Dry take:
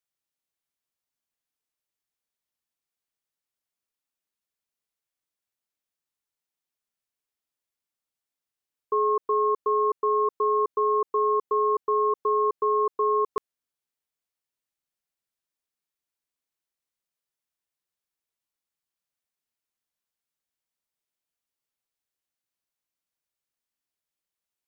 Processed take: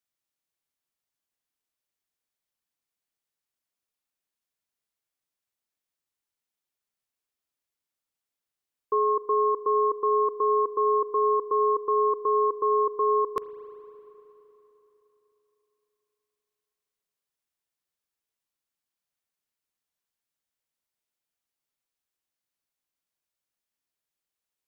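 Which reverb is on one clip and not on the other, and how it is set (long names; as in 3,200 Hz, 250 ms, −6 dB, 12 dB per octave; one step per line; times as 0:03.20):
spring reverb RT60 3.6 s, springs 38/51 ms, chirp 35 ms, DRR 13 dB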